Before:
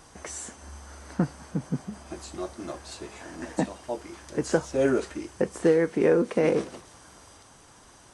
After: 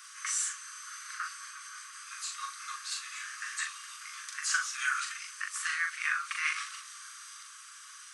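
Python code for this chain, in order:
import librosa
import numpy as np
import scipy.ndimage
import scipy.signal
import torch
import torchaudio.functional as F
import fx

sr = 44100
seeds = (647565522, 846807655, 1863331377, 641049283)

y = scipy.signal.sosfilt(scipy.signal.cheby1(10, 1.0, 1100.0, 'highpass', fs=sr, output='sos'), x)
y = fx.doubler(y, sr, ms=40.0, db=-5)
y = y * librosa.db_to_amplitude(5.5)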